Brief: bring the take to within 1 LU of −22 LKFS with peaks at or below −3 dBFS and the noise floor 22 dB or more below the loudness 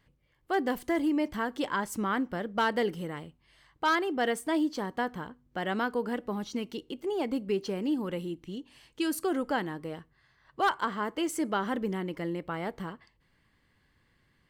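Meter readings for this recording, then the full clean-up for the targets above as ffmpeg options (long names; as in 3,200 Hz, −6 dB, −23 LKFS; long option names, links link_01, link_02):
integrated loudness −31.5 LKFS; sample peak −18.5 dBFS; target loudness −22.0 LKFS
→ -af "volume=9.5dB"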